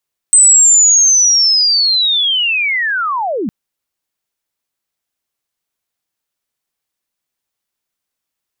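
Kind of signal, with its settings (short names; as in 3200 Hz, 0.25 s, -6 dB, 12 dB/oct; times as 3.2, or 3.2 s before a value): chirp linear 8200 Hz -> 180 Hz -3.5 dBFS -> -15.5 dBFS 3.16 s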